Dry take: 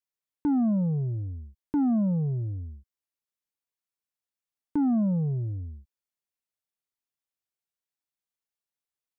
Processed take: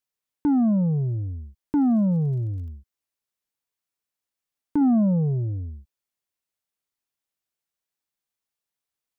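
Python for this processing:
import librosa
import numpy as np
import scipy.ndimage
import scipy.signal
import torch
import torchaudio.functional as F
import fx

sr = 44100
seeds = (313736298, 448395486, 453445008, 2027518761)

y = fx.dmg_crackle(x, sr, seeds[0], per_s=44.0, level_db=-52.0, at=(1.77, 2.69), fade=0.02)
y = fx.peak_eq(y, sr, hz=490.0, db=3.5, octaves=1.4, at=(4.81, 5.7))
y = y * 10.0 ** (4.0 / 20.0)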